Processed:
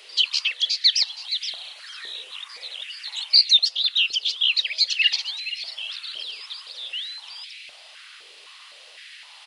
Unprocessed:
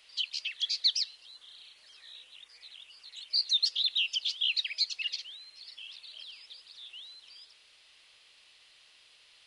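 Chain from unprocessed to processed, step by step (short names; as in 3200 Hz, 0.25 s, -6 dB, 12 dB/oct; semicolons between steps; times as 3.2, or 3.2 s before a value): echo 0.47 s -18 dB; vocal rider 0.5 s; stepped high-pass 3.9 Hz 410–2300 Hz; gain +8 dB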